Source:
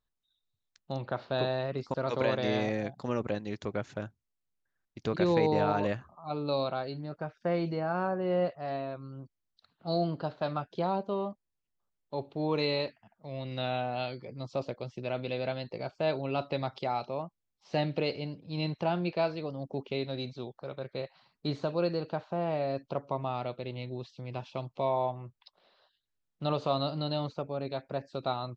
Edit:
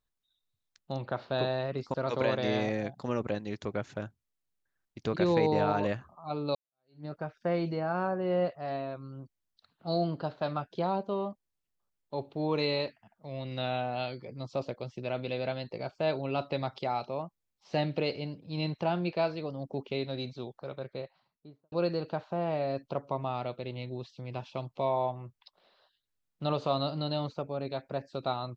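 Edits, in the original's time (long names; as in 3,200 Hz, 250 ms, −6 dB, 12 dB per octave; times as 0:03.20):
0:06.55–0:07.05: fade in exponential
0:20.67–0:21.72: fade out and dull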